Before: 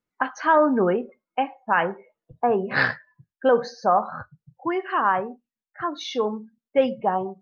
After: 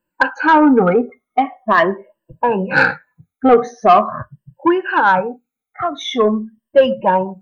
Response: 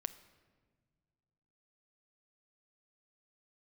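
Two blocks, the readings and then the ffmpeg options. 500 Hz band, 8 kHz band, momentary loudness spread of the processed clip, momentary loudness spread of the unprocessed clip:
+7.5 dB, n/a, 12 LU, 12 LU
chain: -af "afftfilt=real='re*pow(10,20/40*sin(2*PI*(1.3*log(max(b,1)*sr/1024/100)/log(2)-(-0.43)*(pts-256)/sr)))':imag='im*pow(10,20/40*sin(2*PI*(1.3*log(max(b,1)*sr/1024/100)/log(2)-(-0.43)*(pts-256)/sr)))':win_size=1024:overlap=0.75,equalizer=f=5k:w=1.8:g=-15,acontrast=70"

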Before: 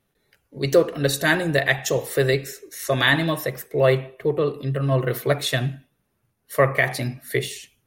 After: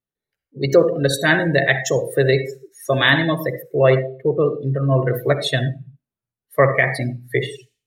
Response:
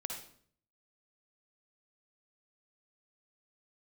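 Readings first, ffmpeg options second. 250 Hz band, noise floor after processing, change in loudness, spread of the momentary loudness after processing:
+3.5 dB, under -85 dBFS, +3.5 dB, 10 LU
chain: -filter_complex "[0:a]asplit=2[a][b];[1:a]atrim=start_sample=2205,afade=t=out:st=0.39:d=0.01,atrim=end_sample=17640[c];[b][c]afir=irnorm=-1:irlink=0,volume=0.5dB[d];[a][d]amix=inputs=2:normalize=0,afftdn=nr=24:nf=-24,volume=-2dB"

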